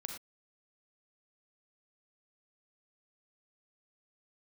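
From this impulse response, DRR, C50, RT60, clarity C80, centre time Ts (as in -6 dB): 3.0 dB, 4.5 dB, not exponential, 8.0 dB, 25 ms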